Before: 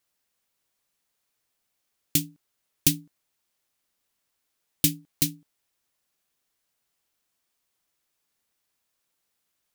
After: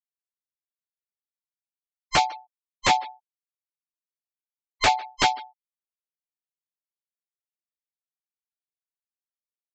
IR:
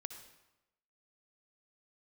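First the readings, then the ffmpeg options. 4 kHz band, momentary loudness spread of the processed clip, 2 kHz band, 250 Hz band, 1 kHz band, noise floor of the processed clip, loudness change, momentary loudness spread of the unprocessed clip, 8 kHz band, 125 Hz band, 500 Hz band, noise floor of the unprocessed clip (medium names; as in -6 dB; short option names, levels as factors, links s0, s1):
+5.5 dB, 13 LU, +15.5 dB, -7.5 dB, no reading, under -85 dBFS, +2.0 dB, 6 LU, -5.0 dB, -7.0 dB, +15.5 dB, -79 dBFS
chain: -filter_complex "[0:a]afftfilt=real='real(if(between(b,1,1008),(2*floor((b-1)/48)+1)*48-b,b),0)':imag='imag(if(between(b,1,1008),(2*floor((b-1)/48)+1)*48-b,b),0)*if(between(b,1,1008),-1,1)':win_size=2048:overlap=0.75,equalizer=f=250:t=o:w=1:g=-6,equalizer=f=2000:t=o:w=1:g=9,equalizer=f=4000:t=o:w=1:g=7,aresample=16000,aeval=exprs='0.0841*(abs(mod(val(0)/0.0841+3,4)-2)-1)':c=same,aresample=44100,asplit=2[s0][s1];[s1]adelay=150,highpass=300,lowpass=3400,asoftclip=type=hard:threshold=0.0422,volume=0.0794[s2];[s0][s2]amix=inputs=2:normalize=0,acrossover=split=3500[s3][s4];[s4]acompressor=threshold=0.00794:ratio=4:attack=1:release=60[s5];[s3][s5]amix=inputs=2:normalize=0,asplit=2[s6][s7];[s7]alimiter=level_in=1.88:limit=0.0631:level=0:latency=1:release=185,volume=0.531,volume=1.19[s8];[s6][s8]amix=inputs=2:normalize=0,afftfilt=real='re*gte(hypot(re,im),0.00398)':imag='im*gte(hypot(re,im),0.00398)':win_size=1024:overlap=0.75,volume=2.66"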